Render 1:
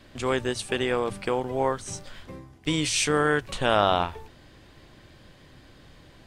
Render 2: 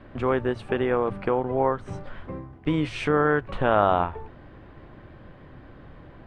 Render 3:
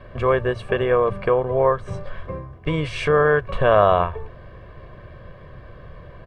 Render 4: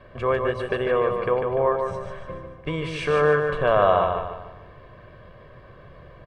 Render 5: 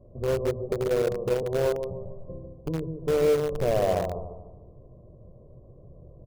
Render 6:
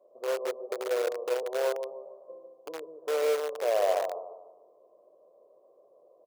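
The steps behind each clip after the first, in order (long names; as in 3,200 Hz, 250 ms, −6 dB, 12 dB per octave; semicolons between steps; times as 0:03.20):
drawn EQ curve 1,300 Hz 0 dB, 2,800 Hz −11 dB, 6,600 Hz −29 dB; in parallel at 0 dB: downward compressor, threshold −32 dBFS, peak gain reduction 14.5 dB
comb filter 1.8 ms, depth 71%; level +3 dB
low-shelf EQ 130 Hz −7 dB; on a send: repeating echo 148 ms, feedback 41%, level −5 dB; on the sum: level −3.5 dB
Gaussian smoothing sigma 15 samples; mains-hum notches 50/100/150/200/250 Hz; in parallel at −10.5 dB: bit reduction 4 bits
high-pass filter 500 Hz 24 dB per octave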